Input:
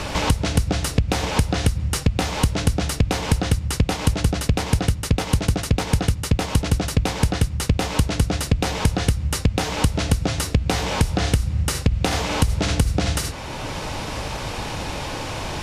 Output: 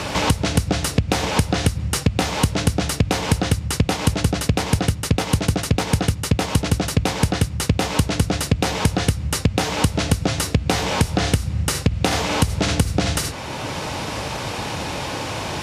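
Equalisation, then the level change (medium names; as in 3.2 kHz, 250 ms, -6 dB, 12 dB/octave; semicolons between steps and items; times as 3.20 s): high-pass 84 Hz; +2.5 dB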